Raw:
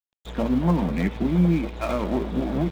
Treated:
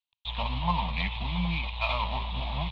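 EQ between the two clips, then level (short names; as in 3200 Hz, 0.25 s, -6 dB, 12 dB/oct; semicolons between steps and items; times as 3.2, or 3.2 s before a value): EQ curve 110 Hz 0 dB, 350 Hz -30 dB, 990 Hz +7 dB, 1500 Hz -14 dB, 2600 Hz +10 dB, 4000 Hz +10 dB, 5900 Hz -16 dB, 9100 Hz -28 dB; 0.0 dB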